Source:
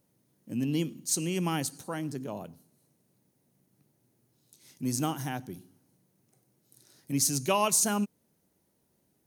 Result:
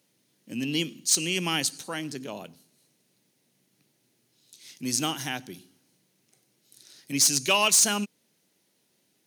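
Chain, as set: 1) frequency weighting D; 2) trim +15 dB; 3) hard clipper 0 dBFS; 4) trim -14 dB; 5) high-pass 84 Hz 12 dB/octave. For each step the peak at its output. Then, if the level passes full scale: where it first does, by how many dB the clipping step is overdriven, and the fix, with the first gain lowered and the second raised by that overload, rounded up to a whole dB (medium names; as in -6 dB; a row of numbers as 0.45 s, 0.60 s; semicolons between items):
-6.0 dBFS, +9.0 dBFS, 0.0 dBFS, -14.0 dBFS, -13.0 dBFS; step 2, 9.0 dB; step 2 +6 dB, step 4 -5 dB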